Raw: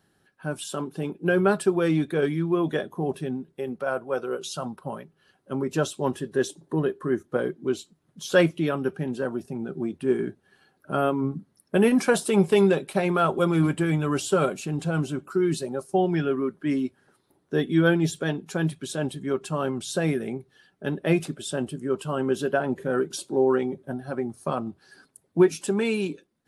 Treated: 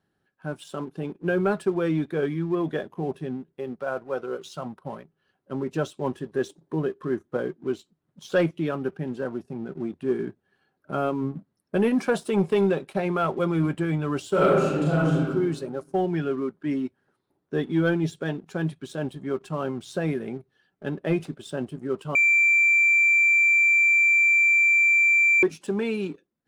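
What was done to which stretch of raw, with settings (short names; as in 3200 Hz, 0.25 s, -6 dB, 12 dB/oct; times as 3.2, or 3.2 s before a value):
14.3–15.22 reverb throw, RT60 1.3 s, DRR -6.5 dB
22.15–25.43 bleep 2350 Hz -11 dBFS
whole clip: LPF 2900 Hz 6 dB/oct; sample leveller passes 1; gain -5.5 dB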